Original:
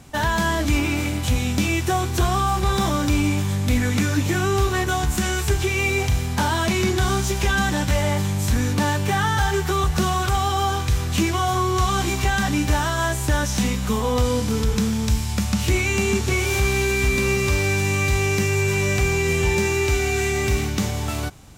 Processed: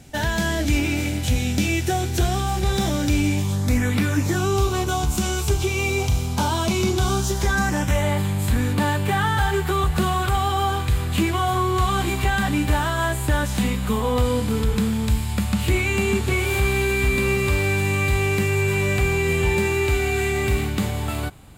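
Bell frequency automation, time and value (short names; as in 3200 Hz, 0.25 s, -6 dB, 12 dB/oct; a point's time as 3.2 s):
bell -14 dB 0.38 oct
3.32 s 1100 Hz
4.01 s 7000 Hz
4.42 s 1800 Hz
7.09 s 1800 Hz
8.14 s 5800 Hz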